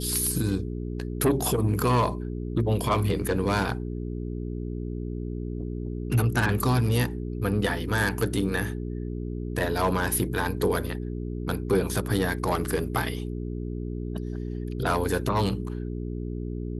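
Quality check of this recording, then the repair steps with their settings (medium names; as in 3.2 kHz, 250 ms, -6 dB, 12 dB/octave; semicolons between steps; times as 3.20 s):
hum 60 Hz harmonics 7 -32 dBFS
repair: de-hum 60 Hz, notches 7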